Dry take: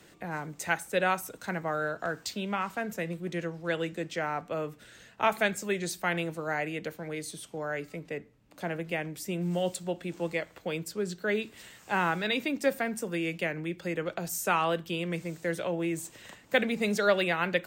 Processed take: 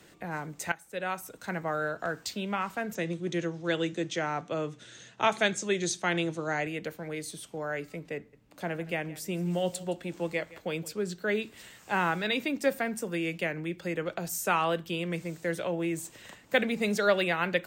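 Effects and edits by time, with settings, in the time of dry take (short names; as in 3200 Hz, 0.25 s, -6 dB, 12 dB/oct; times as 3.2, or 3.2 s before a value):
0.72–1.6 fade in, from -17 dB
2.95–6.67 speaker cabinet 110–9300 Hz, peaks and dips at 130 Hz +9 dB, 340 Hz +5 dB, 3500 Hz +7 dB, 6300 Hz +9 dB
8.16–10.93 echo 0.168 s -19 dB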